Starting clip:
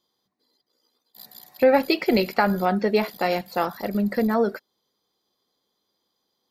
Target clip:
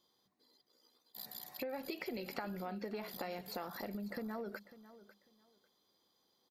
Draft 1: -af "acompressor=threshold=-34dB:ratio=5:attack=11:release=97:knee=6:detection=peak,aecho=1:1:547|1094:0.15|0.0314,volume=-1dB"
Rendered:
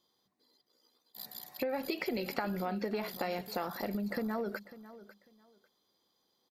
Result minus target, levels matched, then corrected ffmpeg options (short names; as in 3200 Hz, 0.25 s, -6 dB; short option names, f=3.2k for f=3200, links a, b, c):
compressor: peak gain reduction -7 dB
-af "acompressor=threshold=-43dB:ratio=5:attack=11:release=97:knee=6:detection=peak,aecho=1:1:547|1094:0.15|0.0314,volume=-1dB"